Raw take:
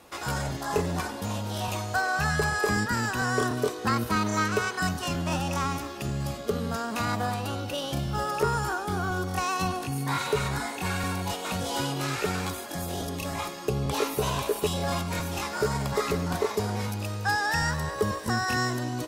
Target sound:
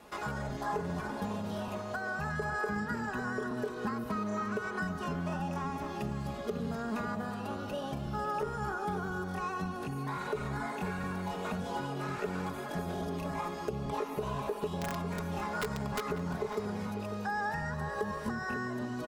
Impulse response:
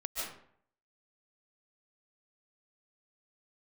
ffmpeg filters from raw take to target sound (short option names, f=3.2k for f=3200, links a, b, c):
-filter_complex "[0:a]acrossover=split=1900|4800[a][b][c];[a]acompressor=threshold=-27dB:ratio=4[d];[b]acompressor=threshold=-50dB:ratio=4[e];[c]acompressor=threshold=-50dB:ratio=4[f];[d][e][f]amix=inputs=3:normalize=0,highshelf=f=3k:g=-7,asettb=1/sr,asplit=3[g][h][i];[g]atrim=end=14.684[j];[h]atrim=start=14.68:end=16.05,asetpts=PTS-STARTPTS,afade=t=in:d=0.004:c=qsin,afade=t=out:st=1.366:d=0.004:c=qsin,aeval=exprs='(mod(13.3*val(0)+1,2)-1)/13.3':c=same[k];[i]atrim=start=16.046[l];[j][k]acrossfade=d=0.004:c1=hsin:c2=qsin[m];[m][l]acrossfade=d=0.004:c1=qsin:c2=hsin,acompressor=threshold=-32dB:ratio=6,aecho=1:1:4.8:0.58,asplit=2[n][o];[o]adelay=548.1,volume=-10dB,highshelf=f=4k:g=-12.3[p];[n][p]amix=inputs=2:normalize=0,volume=-1dB"